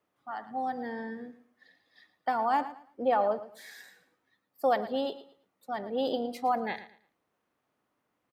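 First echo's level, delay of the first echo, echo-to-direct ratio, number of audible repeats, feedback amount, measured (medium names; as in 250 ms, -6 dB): -14.5 dB, 112 ms, -14.0 dB, 2, 26%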